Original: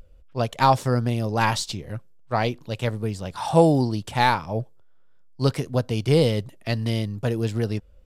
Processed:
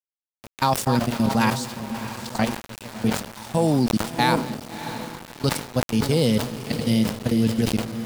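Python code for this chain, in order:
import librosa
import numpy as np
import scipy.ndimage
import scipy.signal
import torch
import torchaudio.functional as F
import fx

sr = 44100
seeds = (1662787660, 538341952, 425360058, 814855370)

p1 = fx.reverse_delay(x, sr, ms=397, wet_db=-8)
p2 = scipy.signal.sosfilt(scipy.signal.butter(4, 94.0, 'highpass', fs=sr, output='sos'), p1)
p3 = fx.peak_eq(p2, sr, hz=220.0, db=11.5, octaves=0.33)
p4 = fx.level_steps(p3, sr, step_db=19)
p5 = fx.high_shelf(p4, sr, hz=4600.0, db=10.0)
p6 = p5 + fx.echo_diffused(p5, sr, ms=646, feedback_pct=46, wet_db=-11, dry=0)
p7 = np.where(np.abs(p6) >= 10.0 ** (-33.5 / 20.0), p6, 0.0)
p8 = fx.buffer_glitch(p7, sr, at_s=(0.3,), block=1024, repeats=5)
y = fx.sustainer(p8, sr, db_per_s=110.0)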